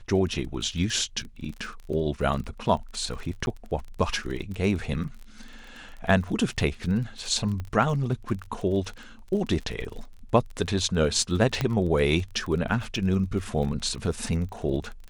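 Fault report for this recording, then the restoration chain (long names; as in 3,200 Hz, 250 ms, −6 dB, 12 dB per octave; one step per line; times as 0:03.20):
surface crackle 31 per second −34 dBFS
0:03.46–0:03.47: drop-out 11 ms
0:07.60: click −22 dBFS
0:11.61: click −11 dBFS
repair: click removal
repair the gap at 0:03.46, 11 ms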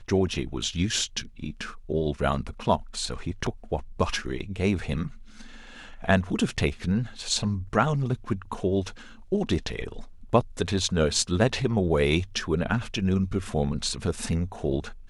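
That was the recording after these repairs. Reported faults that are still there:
none of them is left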